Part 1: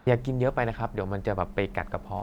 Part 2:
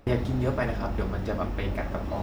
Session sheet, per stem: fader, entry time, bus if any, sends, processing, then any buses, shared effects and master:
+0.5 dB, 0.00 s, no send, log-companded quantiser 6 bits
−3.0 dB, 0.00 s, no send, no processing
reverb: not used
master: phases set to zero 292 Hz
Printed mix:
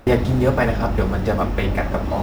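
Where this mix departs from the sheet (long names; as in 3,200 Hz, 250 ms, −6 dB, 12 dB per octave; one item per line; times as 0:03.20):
stem 2 −3.0 dB → +8.5 dB
master: missing phases set to zero 292 Hz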